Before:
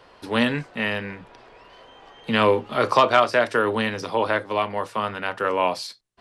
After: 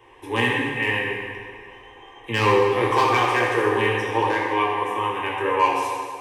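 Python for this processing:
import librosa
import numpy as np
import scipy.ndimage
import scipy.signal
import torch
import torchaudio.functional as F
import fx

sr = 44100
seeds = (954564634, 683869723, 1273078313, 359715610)

y = fx.fixed_phaser(x, sr, hz=920.0, stages=8)
y = np.clip(10.0 ** (15.0 / 20.0) * y, -1.0, 1.0) / 10.0 ** (15.0 / 20.0)
y = fx.rev_fdn(y, sr, rt60_s=2.0, lf_ratio=0.95, hf_ratio=0.85, size_ms=51.0, drr_db=-4.5)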